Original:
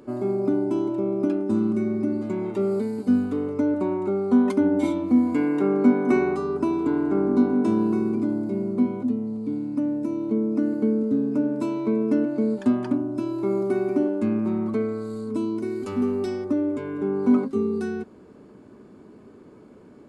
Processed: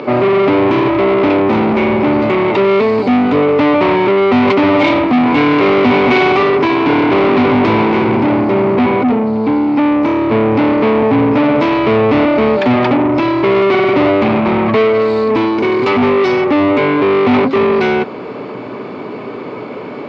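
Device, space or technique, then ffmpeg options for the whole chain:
overdrive pedal into a guitar cabinet: -filter_complex "[0:a]asplit=2[s0][s1];[s1]highpass=f=720:p=1,volume=50.1,asoftclip=type=tanh:threshold=0.473[s2];[s0][s2]amix=inputs=2:normalize=0,lowpass=f=3200:p=1,volume=0.501,highpass=110,equalizer=f=120:t=q:w=4:g=8,equalizer=f=210:t=q:w=4:g=-5,equalizer=f=340:t=q:w=4:g=-5,equalizer=f=1600:t=q:w=4:g=-7,equalizer=f=2300:t=q:w=4:g=6,lowpass=f=4500:w=0.5412,lowpass=f=4500:w=1.3066,volume=1.68"

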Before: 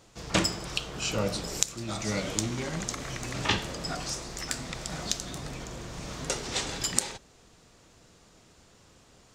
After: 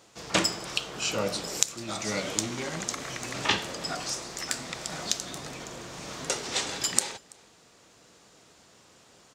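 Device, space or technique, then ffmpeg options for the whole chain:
ducked delay: -filter_complex "[0:a]highpass=f=290:p=1,asplit=3[s0][s1][s2];[s1]adelay=332,volume=0.473[s3];[s2]apad=whole_len=426769[s4];[s3][s4]sidechaincompress=threshold=0.00282:ratio=5:attack=16:release=536[s5];[s0][s5]amix=inputs=2:normalize=0,volume=1.26"

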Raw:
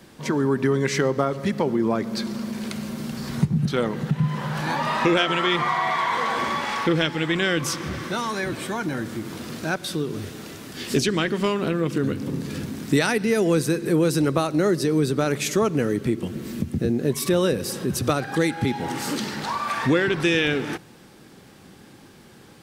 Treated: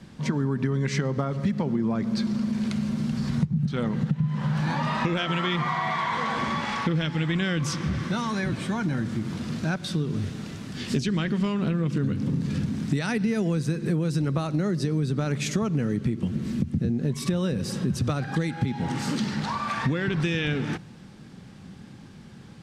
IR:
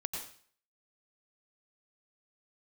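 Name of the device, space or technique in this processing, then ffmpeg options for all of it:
jukebox: -af "lowpass=7400,lowshelf=f=260:t=q:w=1.5:g=7.5,acompressor=threshold=0.112:ratio=6,volume=0.75"

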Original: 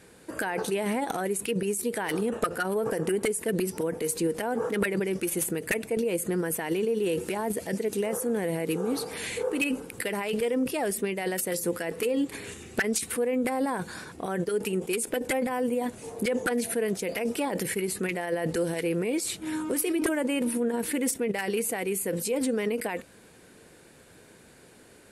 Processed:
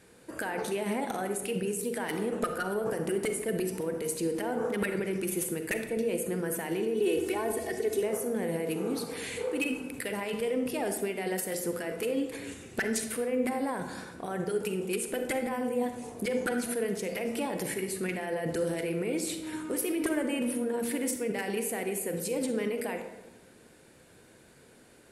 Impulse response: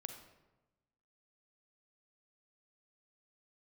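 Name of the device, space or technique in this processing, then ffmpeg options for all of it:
bathroom: -filter_complex "[0:a]asettb=1/sr,asplit=3[s0][s1][s2];[s0]atrim=end=6.954[s3];[s1]atrim=start=6.95:end=8.03,asetpts=PTS-STARTPTS,afade=t=in:d=0.004:c=qsin,afade=t=out:st=1.076:d=0.004:c=qsin,aecho=1:1:2.7:0.91,atrim=end_sample=47628[s4];[s2]atrim=start=8.026[s5];[s3][s4]acrossfade=d=0.004:c1=hsin:c2=qsin[s6];[s6][s5]acrossfade=d=0.004:c1=qsin:c2=hsin[s7];[1:a]atrim=start_sample=2205[s8];[s7][s8]afir=irnorm=-1:irlink=0"

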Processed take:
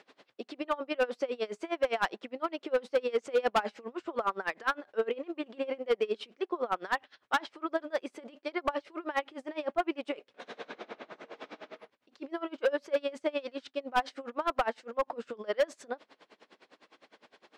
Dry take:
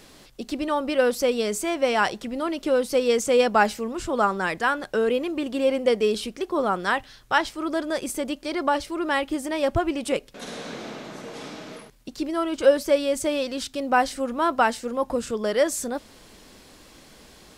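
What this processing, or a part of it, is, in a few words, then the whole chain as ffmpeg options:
helicopter radio: -af "highpass=400,lowpass=2800,aeval=exprs='val(0)*pow(10,-26*(0.5-0.5*cos(2*PI*9.8*n/s))/20)':c=same,asoftclip=type=hard:threshold=0.0944"

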